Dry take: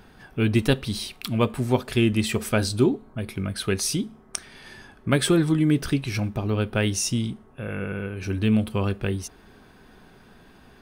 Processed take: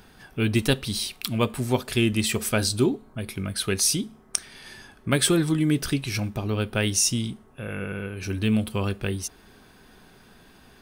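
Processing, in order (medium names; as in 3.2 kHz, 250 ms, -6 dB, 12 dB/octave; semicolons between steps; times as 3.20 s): treble shelf 3.3 kHz +8.5 dB; trim -2 dB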